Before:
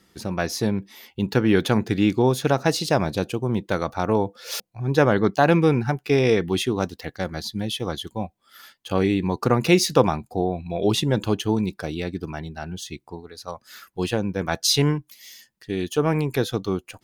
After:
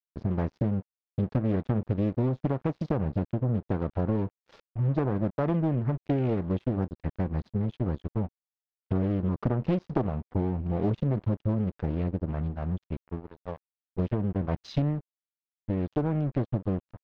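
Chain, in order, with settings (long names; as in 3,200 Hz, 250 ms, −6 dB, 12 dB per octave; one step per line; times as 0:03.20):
spectral tilt −4 dB per octave
downward compressor 4 to 1, threshold −18 dBFS, peak gain reduction 12 dB
dead-zone distortion −34.5 dBFS
high-frequency loss of the air 220 metres
highs frequency-modulated by the lows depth 0.88 ms
level −4.5 dB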